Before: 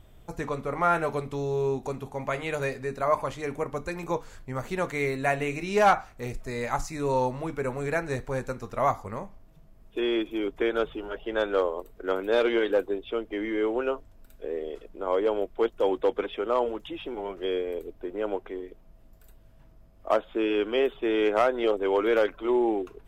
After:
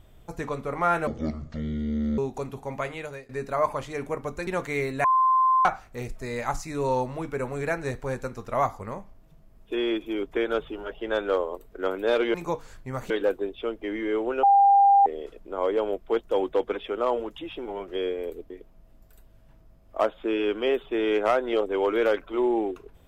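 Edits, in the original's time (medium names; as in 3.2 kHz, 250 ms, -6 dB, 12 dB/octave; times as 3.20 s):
1.07–1.67 s: speed 54%
2.25–2.78 s: fade out, to -22.5 dB
3.96–4.72 s: move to 12.59 s
5.29–5.90 s: bleep 1.04 kHz -17 dBFS
13.92–14.55 s: bleep 798 Hz -13.5 dBFS
17.99–18.61 s: delete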